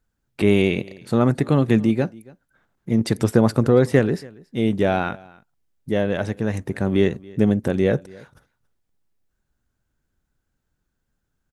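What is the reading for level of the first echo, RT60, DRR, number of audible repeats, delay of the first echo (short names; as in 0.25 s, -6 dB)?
-23.5 dB, none, none, 1, 0.279 s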